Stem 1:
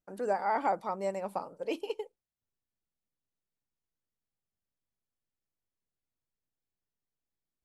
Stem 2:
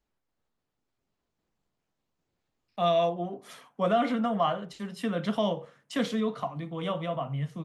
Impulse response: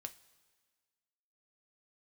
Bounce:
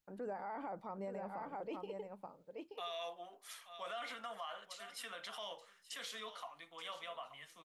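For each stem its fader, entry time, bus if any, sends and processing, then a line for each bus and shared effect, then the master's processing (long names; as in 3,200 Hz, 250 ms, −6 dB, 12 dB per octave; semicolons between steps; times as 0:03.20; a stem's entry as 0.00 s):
−8.0 dB, 0.00 s, no send, echo send −7.5 dB, bass and treble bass +6 dB, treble −12 dB
−3.5 dB, 0.00 s, no send, echo send −17 dB, Bessel high-pass filter 1,500 Hz, order 2; high-shelf EQ 8,300 Hz +7.5 dB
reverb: not used
echo: single-tap delay 878 ms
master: brickwall limiter −35.5 dBFS, peak gain reduction 11 dB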